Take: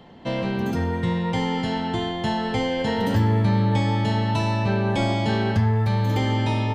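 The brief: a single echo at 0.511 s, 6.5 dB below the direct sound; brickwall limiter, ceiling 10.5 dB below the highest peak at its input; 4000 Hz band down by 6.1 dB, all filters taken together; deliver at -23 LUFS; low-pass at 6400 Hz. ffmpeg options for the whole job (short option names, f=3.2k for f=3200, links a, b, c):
-af "lowpass=6.4k,equalizer=f=4k:t=o:g=-8,alimiter=limit=-20.5dB:level=0:latency=1,aecho=1:1:511:0.473,volume=4.5dB"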